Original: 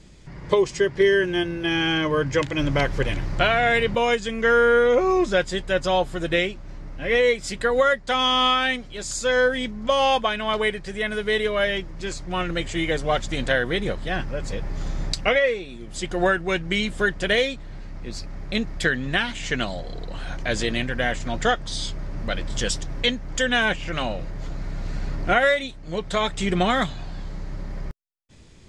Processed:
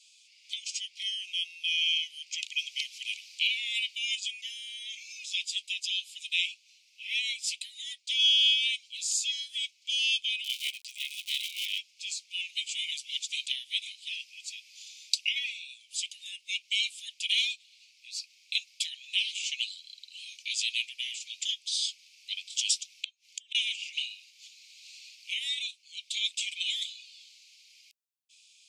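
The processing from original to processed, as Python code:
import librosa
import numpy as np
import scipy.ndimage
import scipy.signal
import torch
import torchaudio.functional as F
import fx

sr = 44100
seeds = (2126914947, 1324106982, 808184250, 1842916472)

y = fx.cycle_switch(x, sr, every=3, mode='muted', at=(10.44, 11.79))
y = scipy.signal.sosfilt(scipy.signal.butter(16, 2400.0, 'highpass', fs=sr, output='sos'), y)
y = fx.gate_flip(y, sr, shuts_db=-19.0, range_db=-30, at=(22.92, 23.55))
y = y * 10.0 ** (1.0 / 20.0)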